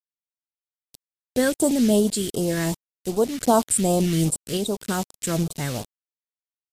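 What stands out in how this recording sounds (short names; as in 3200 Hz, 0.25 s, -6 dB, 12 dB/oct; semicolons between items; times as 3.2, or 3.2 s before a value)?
a quantiser's noise floor 6-bit, dither none; random-step tremolo; phasing stages 2, 2.6 Hz, lowest notch 770–1800 Hz; MP3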